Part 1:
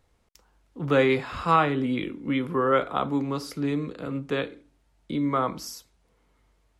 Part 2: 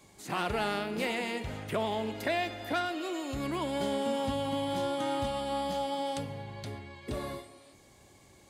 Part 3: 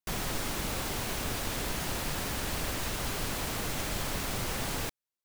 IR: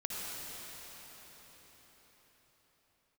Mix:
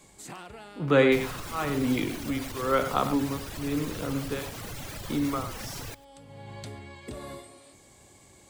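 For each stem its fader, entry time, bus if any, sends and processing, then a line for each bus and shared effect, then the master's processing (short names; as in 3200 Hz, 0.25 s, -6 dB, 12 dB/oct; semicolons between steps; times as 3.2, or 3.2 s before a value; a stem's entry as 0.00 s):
+0.5 dB, 0.00 s, no send, echo send -10 dB, beating tremolo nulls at 1 Hz
+2.0 dB, 0.00 s, no send, no echo send, bell 7900 Hz +8.5 dB 0.34 oct; compressor 6:1, threshold -38 dBFS, peak gain reduction 11 dB; auto duck -20 dB, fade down 1.90 s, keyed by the first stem
0.0 dB, 1.05 s, no send, echo send -21 dB, reverb removal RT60 1.8 s; bell 110 Hz +7 dB; limiter -29 dBFS, peak gain reduction 7.5 dB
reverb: off
echo: echo 0.102 s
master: dry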